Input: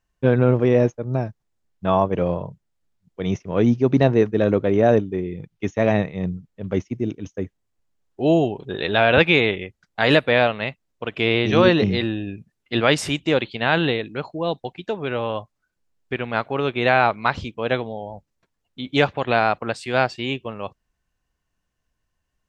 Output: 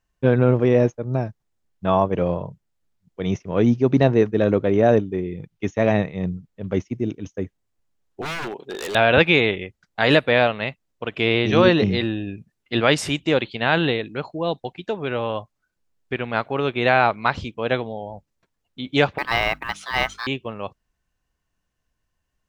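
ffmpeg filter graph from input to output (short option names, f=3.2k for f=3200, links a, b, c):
-filter_complex "[0:a]asettb=1/sr,asplit=3[a][b][c];[a]atrim=end=8.214[d];[b]atrim=start=8.21:end=8.95,asetpts=PTS-STARTPTS,afade=t=in:d=0.004:c=qsin,afade=t=out:st=0.736:d=0.004:c=qsin,highpass=310,aeval=exprs='0.0668*(abs(mod(val(0)/0.0668+3,4)-2)-1)':c=same[e];[c]atrim=start=8.946[f];[d][e]acrossfade=d=0.004:c1=hsin:c2=qsin[g];[g][f]acrossfade=d=0.004:c1=qsin:c2=hsin,asettb=1/sr,asplit=3[h][i][j];[h]atrim=end=19.184[k];[i]atrim=start=19.18:end=20.27,asetpts=PTS-STARTPTS,afade=t=in:d=0.004:c=qsin,afade=t=out:st=1.086:d=0.004:c=qsin,aeval=exprs='val(0)*sin(2*PI*1400*n/s)':c=same,bandreject=f=50:t=h:w=6,bandreject=f=100:t=h:w=6,bandreject=f=150:t=h:w=6,bandreject=f=200:t=h:w=6,bandreject=f=250:t=h:w=6,bandreject=f=300:t=h:w=6,acrusher=bits=7:mode=log:mix=0:aa=0.000001[l];[j]atrim=start=20.266[m];[k][l]acrossfade=d=0.004:c1=hsin:c2=qsin[n];[n][m]acrossfade=d=0.004:c1=qsin:c2=hsin"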